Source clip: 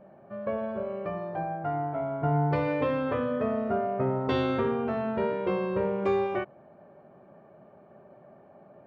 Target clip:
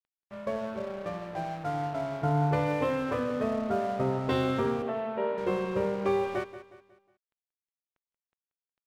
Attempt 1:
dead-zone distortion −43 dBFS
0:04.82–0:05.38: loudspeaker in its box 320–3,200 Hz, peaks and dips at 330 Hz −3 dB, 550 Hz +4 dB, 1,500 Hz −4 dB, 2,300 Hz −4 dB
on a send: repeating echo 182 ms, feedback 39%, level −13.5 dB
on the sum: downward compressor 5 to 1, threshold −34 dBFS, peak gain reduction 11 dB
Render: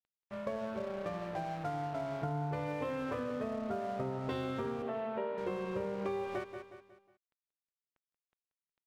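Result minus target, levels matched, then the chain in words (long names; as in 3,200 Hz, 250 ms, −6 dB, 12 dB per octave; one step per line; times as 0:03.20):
downward compressor: peak gain reduction +11 dB
dead-zone distortion −43 dBFS
0:04.82–0:05.38: loudspeaker in its box 320–3,200 Hz, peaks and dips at 330 Hz −3 dB, 550 Hz +4 dB, 1,500 Hz −4 dB, 2,300 Hz −4 dB
on a send: repeating echo 182 ms, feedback 39%, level −13.5 dB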